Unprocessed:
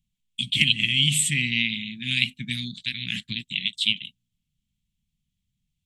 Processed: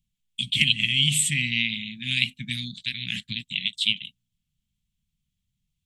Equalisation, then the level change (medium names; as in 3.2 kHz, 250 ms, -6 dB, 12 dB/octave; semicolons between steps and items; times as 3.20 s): peaking EQ 550 Hz -13.5 dB 1.2 oct; 0.0 dB